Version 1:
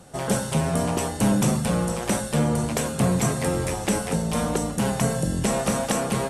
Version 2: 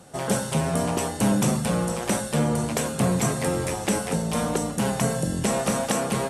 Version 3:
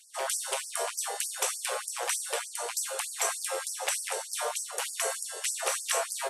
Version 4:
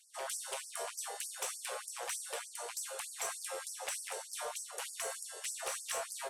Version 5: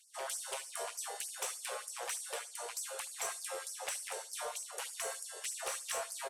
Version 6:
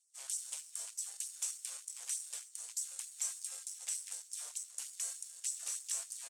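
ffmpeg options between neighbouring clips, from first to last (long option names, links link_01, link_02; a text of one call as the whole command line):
ffmpeg -i in.wav -af "highpass=frequency=97:poles=1" out.wav
ffmpeg -i in.wav -filter_complex "[0:a]acrossover=split=120|1200[link_01][link_02][link_03];[link_02]alimiter=limit=-22dB:level=0:latency=1[link_04];[link_01][link_04][link_03]amix=inputs=3:normalize=0,afftfilt=real='re*gte(b*sr/1024,370*pow(4700/370,0.5+0.5*sin(2*PI*3.3*pts/sr)))':imag='im*gte(b*sr/1024,370*pow(4700/370,0.5+0.5*sin(2*PI*3.3*pts/sr)))':win_size=1024:overlap=0.75" out.wav
ffmpeg -i in.wav -af "asoftclip=type=tanh:threshold=-20.5dB,volume=-8dB" out.wav
ffmpeg -i in.wav -af "aecho=1:1:73|146:0.106|0.0191" out.wav
ffmpeg -i in.wav -af "aeval=exprs='0.0376*(cos(1*acos(clip(val(0)/0.0376,-1,1)))-cos(1*PI/2))+0.00422*(cos(7*acos(clip(val(0)/0.0376,-1,1)))-cos(7*PI/2))+0.00299*(cos(8*acos(clip(val(0)/0.0376,-1,1)))-cos(8*PI/2))':channel_layout=same,bandpass=frequency=7400:width_type=q:width=2:csg=0,volume=5dB" out.wav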